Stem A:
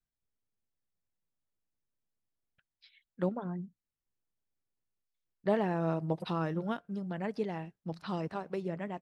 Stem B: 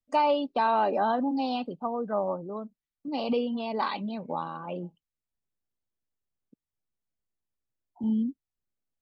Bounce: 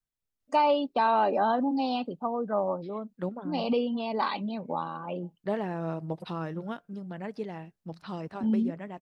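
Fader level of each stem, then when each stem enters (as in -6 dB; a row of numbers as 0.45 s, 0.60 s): -1.5 dB, +0.5 dB; 0.00 s, 0.40 s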